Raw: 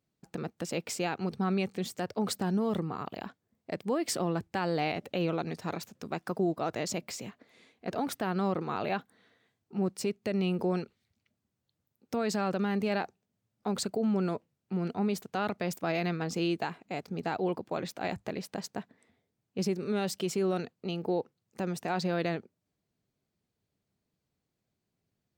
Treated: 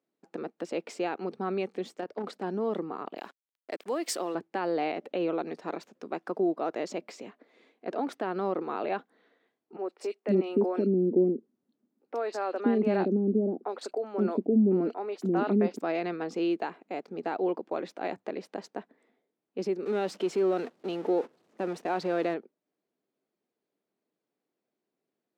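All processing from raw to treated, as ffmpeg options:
-filter_complex "[0:a]asettb=1/sr,asplit=3[a][b][c];[a]atrim=end=1.944[d];[b]atrim=start=1.94:end=2.43,asetpts=PTS-STARTPTS,afade=t=in:d=0.004:c=qsin,afade=t=out:st=0.486:d=0.004:c=qsin,acrossover=split=5100[e][f];[f]acompressor=threshold=-41dB:ratio=4:attack=1:release=60[g];[e][g]amix=inputs=2:normalize=0,tremolo=f=33:d=0.519,asoftclip=type=hard:threshold=-27.5dB[h];[c]atrim=start=2.426[i];[d][h]acrossfade=d=0.004:c1=hsin:c2=qsin[j];[j][i]acrossfade=d=0.004:c1=qsin:c2=hsin,asettb=1/sr,asplit=3[k][l][m];[k]atrim=end=3.174[n];[l]atrim=start=3.17:end=4.35,asetpts=PTS-STARTPTS,afade=t=in:d=0.004:c=qsin,afade=t=out:st=1.176:d=0.004:c=qsin,aemphasis=mode=production:type=riaa,acrusher=bits=7:mix=0:aa=0.5[o];[m]atrim=start=4.346[p];[n][o]acrossfade=d=0.004:c1=hsin:c2=qsin[q];[q][p]acrossfade=d=0.004:c1=qsin:c2=hsin,asettb=1/sr,asplit=3[r][s][t];[r]atrim=end=9.764[u];[s]atrim=start=9.76:end=15.82,asetpts=PTS-STARTPTS,afade=t=in:d=0.004:c=qsin,afade=t=out:st=6.056:d=0.004:c=qsin,equalizer=f=250:w=0.96:g=13,acrossover=split=490|2700[v][w][x];[x]adelay=30[y];[v]adelay=520[z];[z][w][y]amix=inputs=3:normalize=0,atrim=end_sample=267246[aa];[t]atrim=start=15.816[ab];[u][aa]acrossfade=d=0.004:c1=hsin:c2=qsin[ac];[ac][ab]acrossfade=d=0.004:c1=qsin:c2=hsin,asettb=1/sr,asplit=3[ad][ae][af];[ad]atrim=end=19.854[ag];[ae]atrim=start=19.85:end=22.34,asetpts=PTS-STARTPTS,afade=t=in:d=0.004:c=qsin,afade=t=out:st=2.486:d=0.004:c=qsin,aeval=exprs='val(0)+0.5*0.0126*sgn(val(0))':c=same,agate=range=-19dB:threshold=-40dB:ratio=16:release=100:detection=peak[ah];[af]atrim=start=22.336[ai];[ag][ah]acrossfade=d=0.004:c1=hsin:c2=qsin[aj];[aj][ai]acrossfade=d=0.004:c1=qsin:c2=hsin,highpass=f=310:w=0.5412,highpass=f=310:w=1.3066,aemphasis=mode=reproduction:type=riaa"

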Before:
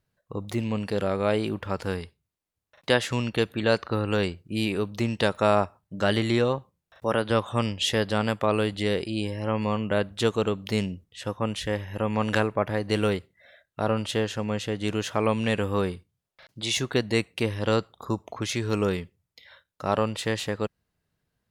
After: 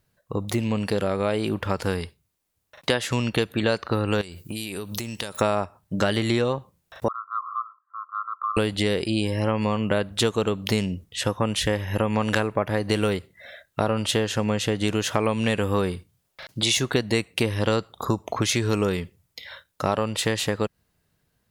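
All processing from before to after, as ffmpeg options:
-filter_complex "[0:a]asettb=1/sr,asplit=3[a][b][c];[a]atrim=end=4.214[d];[b]atrim=start=4.21:end=5.41,asetpts=PTS-STARTPTS,afade=t=in:d=0.004:c=qsin,afade=t=out:st=1.196:d=0.004:c=qsin,aemphasis=mode=production:type=75kf,acompressor=threshold=-37dB:ratio=16:attack=3.2:release=140:knee=1:detection=peak[e];[c]atrim=start=5.406[f];[d][e]acrossfade=d=0.004:c1=hsin:c2=qsin[g];[g][f]acrossfade=d=0.004:c1=qsin:c2=hsin,asettb=1/sr,asplit=3[h][i][j];[h]atrim=end=7.084[k];[i]atrim=start=7.08:end=8.57,asetpts=PTS-STARTPTS,afade=t=in:d=0.004:c=qsin,afade=t=out:st=1.486:d=0.004:c=qsin,asuperpass=centerf=1200:order=12:qfactor=3.7,acompressor=threshold=-37dB:ratio=2:attack=3.2:release=140:knee=1:detection=peak[l];[j]atrim=start=8.566[m];[k][l]acrossfade=d=0.004:c1=hsin:c2=qsin[n];[n][m]acrossfade=d=0.004:c1=qsin:c2=hsin,dynaudnorm=f=500:g=9:m=5dB,highshelf=f=7.3k:g=6,acompressor=threshold=-27dB:ratio=4,volume=6.5dB"

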